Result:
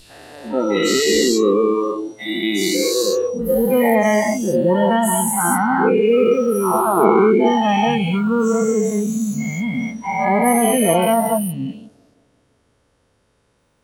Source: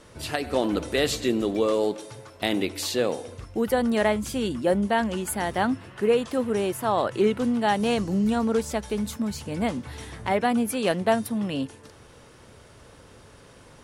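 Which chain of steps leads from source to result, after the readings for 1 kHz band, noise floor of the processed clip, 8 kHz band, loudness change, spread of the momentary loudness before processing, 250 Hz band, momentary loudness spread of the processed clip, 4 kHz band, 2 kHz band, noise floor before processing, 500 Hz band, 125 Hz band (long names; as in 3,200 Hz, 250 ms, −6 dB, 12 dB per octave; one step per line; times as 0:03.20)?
+9.5 dB, −63 dBFS, +12.5 dB, +8.5 dB, 8 LU, +7.5 dB, 8 LU, +7.0 dB, +7.5 dB, −51 dBFS, +9.0 dB, +7.5 dB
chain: every bin's largest magnitude spread in time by 480 ms
bucket-brigade delay 172 ms, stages 1,024, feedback 61%, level −12 dB
noise reduction from a noise print of the clip's start 22 dB
level +2.5 dB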